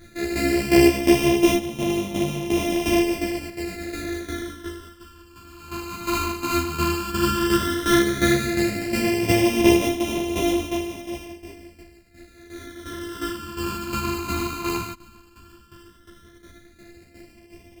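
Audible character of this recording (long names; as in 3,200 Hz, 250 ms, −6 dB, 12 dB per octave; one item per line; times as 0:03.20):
a buzz of ramps at a fixed pitch in blocks of 128 samples
phaser sweep stages 12, 0.12 Hz, lowest notch 590–1,500 Hz
tremolo saw down 2.8 Hz, depth 70%
a shimmering, thickened sound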